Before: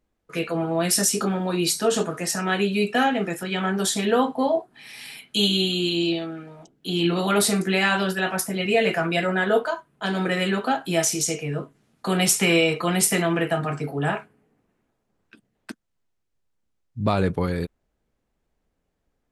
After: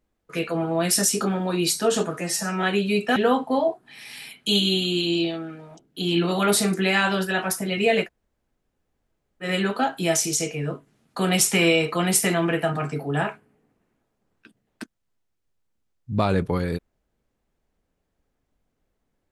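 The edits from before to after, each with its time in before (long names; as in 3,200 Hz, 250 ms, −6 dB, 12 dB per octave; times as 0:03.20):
0:02.21–0:02.49: time-stretch 1.5×
0:03.02–0:04.04: remove
0:08.92–0:10.33: fill with room tone, crossfade 0.10 s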